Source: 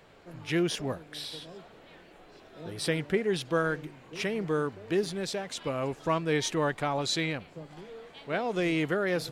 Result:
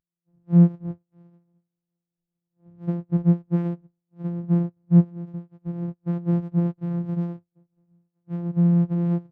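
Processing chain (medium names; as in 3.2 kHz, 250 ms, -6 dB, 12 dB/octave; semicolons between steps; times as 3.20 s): sorted samples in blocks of 256 samples; loudness maximiser +18 dB; spectral contrast expander 2.5:1; trim -6 dB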